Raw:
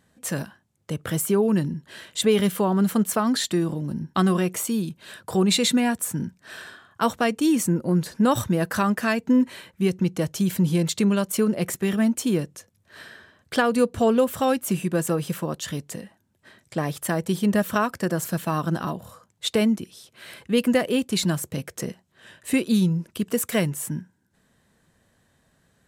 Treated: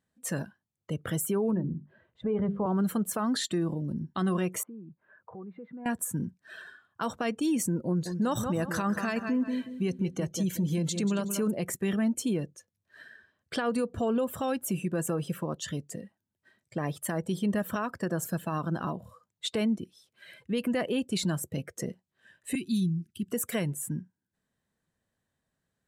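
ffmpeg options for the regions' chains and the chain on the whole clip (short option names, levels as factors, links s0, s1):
-filter_complex "[0:a]asettb=1/sr,asplit=3[s0][s1][s2];[s0]atrim=end=1.514[s3];[s1]atrim=start=1.51:end=2.66,asetpts=PTS-STARTPTS,afade=t=in:d=0.004:c=qsin,afade=t=out:st=1.146:d=0.004:c=qsin,lowpass=1100,asubboost=boost=10:cutoff=130,bandreject=f=50:t=h:w=6,bandreject=f=100:t=h:w=6,bandreject=f=150:t=h:w=6,bandreject=f=200:t=h:w=6,bandreject=f=250:t=h:w=6,bandreject=f=300:t=h:w=6,bandreject=f=350:t=h:w=6,bandreject=f=400:t=h:w=6,bandreject=f=450:t=h:w=6[s4];[s2]atrim=start=2.656[s5];[s3][s4]acrossfade=d=0.004:c1=hsin:c2=qsin[s6];[s6][s5]acrossfade=d=0.004:c1=qsin:c2=hsin,asettb=1/sr,asplit=3[s7][s8][s9];[s7]atrim=end=4.634[s10];[s8]atrim=start=4.63:end=5.86,asetpts=PTS-STARTPTS,afade=t=in:d=0.004:c=qsin,afade=t=out:st=1.226:d=0.004:c=qsin,lowpass=f=1500:w=0.5412,lowpass=f=1500:w=1.3066,lowshelf=f=480:g=-7.5,acompressor=threshold=0.01:ratio=3:attack=3.2:release=140:knee=1:detection=peak[s11];[s9]atrim=start=5.856[s12];[s10][s11]acrossfade=d=0.004:c1=hsin:c2=qsin[s13];[s13][s12]acrossfade=d=0.004:c1=qsin:c2=hsin,asettb=1/sr,asplit=3[s14][s15][s16];[s14]atrim=end=7.874[s17];[s15]atrim=start=7.87:end=11.51,asetpts=PTS-STARTPTS,afade=t=in:d=0.004:c=qsin,afade=t=out:st=3.636:d=0.004:c=qsin,equalizer=f=6400:w=6.4:g=5.5,aecho=1:1:184|368|552|736:0.316|0.108|0.0366|0.0124,atrim=end_sample=160524[s18];[s16]atrim=start=11.506[s19];[s17][s18]acrossfade=d=0.004:c1=hsin:c2=qsin[s20];[s20][s19]acrossfade=d=0.004:c1=qsin:c2=hsin,asettb=1/sr,asplit=3[s21][s22][s23];[s21]atrim=end=22.554[s24];[s22]atrim=start=22.55:end=23.32,asetpts=PTS-STARTPTS,afade=t=in:d=0.004:c=qsin,afade=t=out:st=0.766:d=0.004:c=qsin,asuperstop=centerf=710:order=12:qfactor=0.81,equalizer=f=810:t=o:w=2.6:g=-11.5[s25];[s23]atrim=start=23.316[s26];[s24][s25]acrossfade=d=0.004:c1=hsin:c2=qsin[s27];[s27][s26]acrossfade=d=0.004:c1=qsin:c2=hsin,afftdn=nr=14:nf=-40,alimiter=limit=0.141:level=0:latency=1:release=64,volume=0.631"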